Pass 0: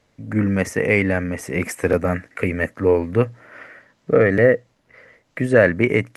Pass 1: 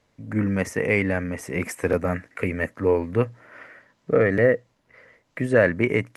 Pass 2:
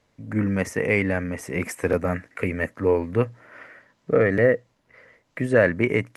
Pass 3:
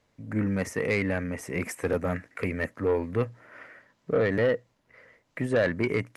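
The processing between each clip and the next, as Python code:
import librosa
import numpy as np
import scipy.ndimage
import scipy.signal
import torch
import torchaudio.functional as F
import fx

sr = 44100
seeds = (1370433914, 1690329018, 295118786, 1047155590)

y1 = fx.peak_eq(x, sr, hz=990.0, db=3.5, octaves=0.22)
y1 = F.gain(torch.from_numpy(y1), -4.0).numpy()
y2 = y1
y3 = 10.0 ** (-14.0 / 20.0) * np.tanh(y2 / 10.0 ** (-14.0 / 20.0))
y3 = F.gain(torch.from_numpy(y3), -3.0).numpy()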